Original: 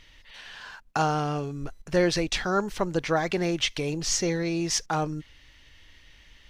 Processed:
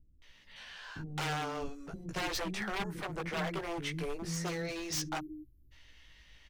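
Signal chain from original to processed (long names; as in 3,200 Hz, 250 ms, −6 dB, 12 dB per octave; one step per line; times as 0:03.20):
0:02.15–0:04.24: flat-topped bell 4,400 Hz −10.5 dB
0:04.96–0:05.50: time-frequency box erased 390–11,000 Hz
chorus effect 0.41 Hz, delay 15.5 ms, depth 2.9 ms
wave folding −27.5 dBFS
multiband delay without the direct sound lows, highs 220 ms, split 310 Hz
level −2 dB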